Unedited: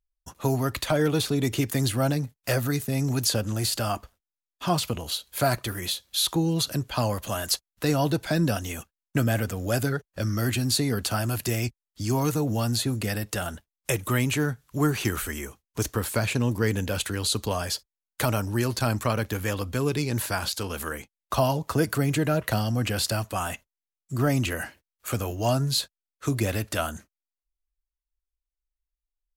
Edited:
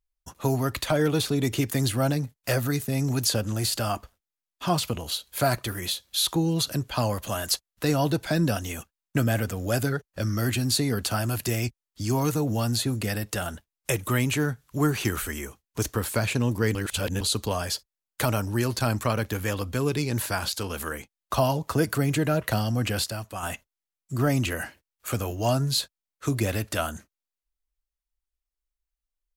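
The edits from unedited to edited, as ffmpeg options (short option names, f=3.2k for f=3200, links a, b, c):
-filter_complex "[0:a]asplit=5[a][b][c][d][e];[a]atrim=end=16.752[f];[b]atrim=start=16.748:end=17.212,asetpts=PTS-STARTPTS,areverse[g];[c]atrim=start=17.208:end=23.042[h];[d]atrim=start=23.038:end=23.432,asetpts=PTS-STARTPTS,volume=-6dB[i];[e]atrim=start=23.428[j];[f][g]acrossfade=d=0.004:c1=hsin:c2=hsin[k];[k][h]acrossfade=d=0.004:c1=hsin:c2=hsin[l];[l][i]acrossfade=d=0.004:c1=hsin:c2=hsin[m];[m][j]acrossfade=d=0.004:c1=hsin:c2=hsin"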